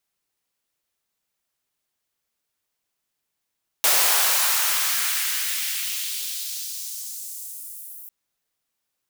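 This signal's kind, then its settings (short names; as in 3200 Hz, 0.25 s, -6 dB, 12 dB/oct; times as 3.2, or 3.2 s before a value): swept filtered noise white, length 4.25 s highpass, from 570 Hz, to 13000 Hz, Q 1.3, exponential, gain ramp -21.5 dB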